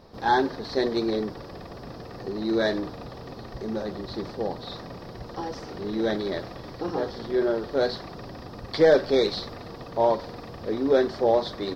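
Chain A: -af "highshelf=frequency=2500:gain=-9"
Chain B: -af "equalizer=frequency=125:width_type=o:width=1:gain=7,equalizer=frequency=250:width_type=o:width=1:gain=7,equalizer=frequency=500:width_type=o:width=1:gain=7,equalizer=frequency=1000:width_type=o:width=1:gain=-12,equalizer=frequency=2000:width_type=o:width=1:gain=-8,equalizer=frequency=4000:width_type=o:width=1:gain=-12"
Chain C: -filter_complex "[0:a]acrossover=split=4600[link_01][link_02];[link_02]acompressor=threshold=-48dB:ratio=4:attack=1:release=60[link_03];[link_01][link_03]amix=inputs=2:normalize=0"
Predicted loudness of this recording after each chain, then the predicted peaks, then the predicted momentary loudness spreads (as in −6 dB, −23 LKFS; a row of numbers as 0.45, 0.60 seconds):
−27.0, −21.5, −26.5 LKFS; −9.5, −3.5, −8.5 dBFS; 18, 18, 18 LU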